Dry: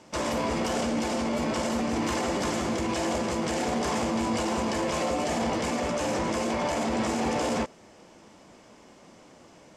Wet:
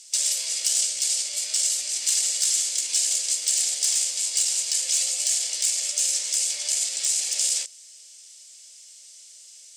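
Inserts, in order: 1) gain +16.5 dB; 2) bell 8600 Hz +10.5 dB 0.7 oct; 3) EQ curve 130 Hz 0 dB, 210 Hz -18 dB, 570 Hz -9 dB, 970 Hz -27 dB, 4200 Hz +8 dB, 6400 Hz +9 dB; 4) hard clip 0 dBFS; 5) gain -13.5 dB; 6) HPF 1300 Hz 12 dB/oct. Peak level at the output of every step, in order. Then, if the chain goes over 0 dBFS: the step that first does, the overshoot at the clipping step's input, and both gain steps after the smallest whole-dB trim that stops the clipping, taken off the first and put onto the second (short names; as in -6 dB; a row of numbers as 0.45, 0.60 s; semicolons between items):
-0.5, +1.0, +6.0, 0.0, -13.5, -11.5 dBFS; step 2, 6.0 dB; step 1 +10.5 dB, step 5 -7.5 dB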